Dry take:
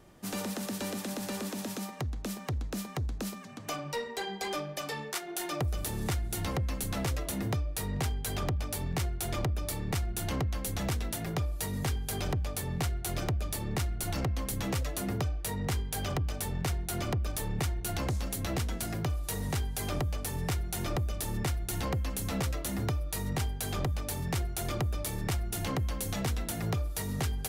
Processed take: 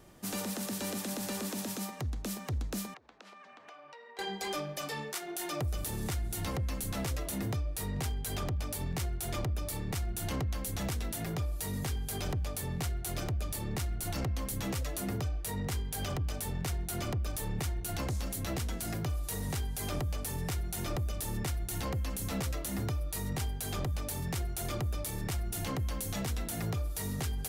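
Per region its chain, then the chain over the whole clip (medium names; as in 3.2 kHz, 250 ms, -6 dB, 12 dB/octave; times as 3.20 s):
2.94–4.19 s: band-pass 620–2400 Hz + compression, threshold -49 dBFS
whole clip: treble shelf 5.4 kHz +5 dB; peak limiter -27.5 dBFS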